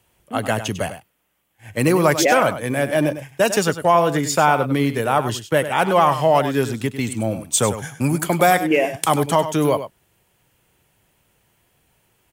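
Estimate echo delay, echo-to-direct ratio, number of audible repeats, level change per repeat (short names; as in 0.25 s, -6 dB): 99 ms, -11.5 dB, 1, no steady repeat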